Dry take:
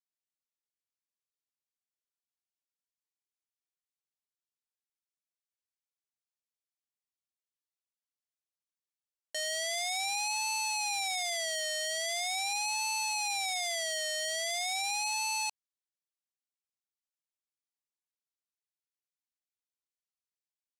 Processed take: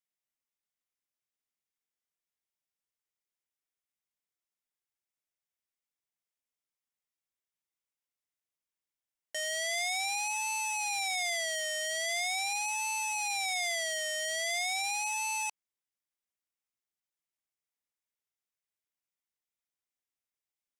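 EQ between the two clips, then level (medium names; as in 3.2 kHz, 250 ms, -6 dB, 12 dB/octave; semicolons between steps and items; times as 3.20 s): peaking EQ 2.1 kHz +5 dB 0.26 oct; band-stop 4.3 kHz, Q 8.5; 0.0 dB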